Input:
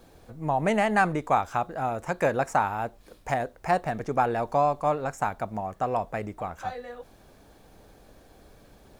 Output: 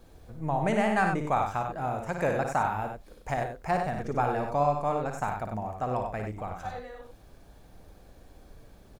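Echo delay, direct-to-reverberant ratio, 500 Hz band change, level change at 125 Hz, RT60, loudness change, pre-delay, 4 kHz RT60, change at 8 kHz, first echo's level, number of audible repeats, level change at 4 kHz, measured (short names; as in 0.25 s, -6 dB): 56 ms, none, -2.5 dB, +1.0 dB, none, -2.5 dB, none, none, -3.0 dB, -6.5 dB, 2, -3.0 dB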